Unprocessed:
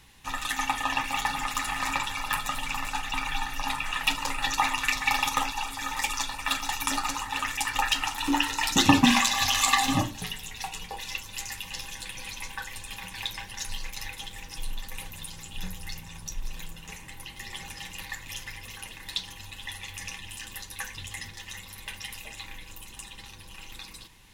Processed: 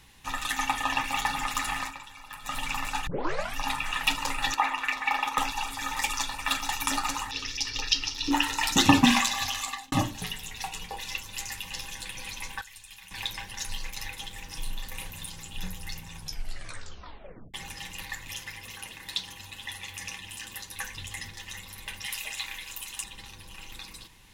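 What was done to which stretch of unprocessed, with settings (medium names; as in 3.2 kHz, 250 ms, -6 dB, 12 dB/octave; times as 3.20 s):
1.76–2.57 s: dip -14.5 dB, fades 0.17 s
3.07 s: tape start 0.49 s
4.54–5.38 s: three-band isolator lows -18 dB, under 260 Hz, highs -13 dB, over 2.8 kHz
7.31–8.31 s: FFT filter 110 Hz 0 dB, 220 Hz -6 dB, 440 Hz +4 dB, 650 Hz -18 dB, 1.6 kHz -13 dB, 5.5 kHz +10 dB, 7.9 kHz -16 dB
9.05–9.92 s: fade out
12.61–13.11 s: amplifier tone stack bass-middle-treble 5-5-5
14.45–15.32 s: doubling 33 ms -8 dB
16.18 s: tape stop 1.36 s
18.33–20.75 s: high-pass 93 Hz 6 dB/octave
22.06–23.04 s: tilt shelf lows -7.5 dB, about 650 Hz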